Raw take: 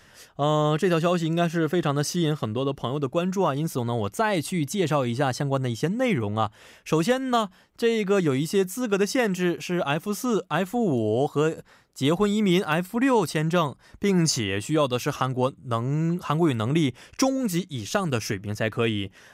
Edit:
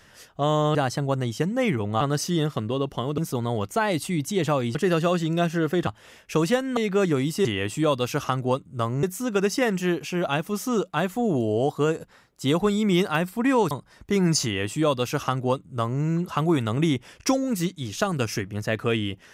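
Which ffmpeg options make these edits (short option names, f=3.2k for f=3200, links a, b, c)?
-filter_complex "[0:a]asplit=10[a][b][c][d][e][f][g][h][i][j];[a]atrim=end=0.752[k];[b]atrim=start=5.178:end=6.442[l];[c]atrim=start=1.868:end=3.042[m];[d]atrim=start=3.608:end=5.182[n];[e]atrim=start=0.748:end=1.872[o];[f]atrim=start=6.438:end=7.342[p];[g]atrim=start=7.918:end=8.602[q];[h]atrim=start=14.368:end=15.952[r];[i]atrim=start=8.598:end=13.282[s];[j]atrim=start=13.638[t];[k][l]acrossfade=d=0.004:c1=hsin:c2=hsin[u];[u][m]acrossfade=d=0.004:c1=hsin:c2=hsin[v];[v][n]acrossfade=d=0.004:c1=hsin:c2=hsin[w];[w][o]acrossfade=d=0.004:c1=hsin:c2=hsin[x];[x][p]acrossfade=d=0.004:c1=hsin:c2=hsin[y];[y][q]acrossfade=d=0.004:c1=hsin:c2=hsin[z];[z][r]acrossfade=d=0.004:c1=hsin:c2=hsin[aa];[aa][s]acrossfade=d=0.004:c1=hsin:c2=hsin[ab];[ab][t]acrossfade=d=0.004:c1=hsin:c2=hsin"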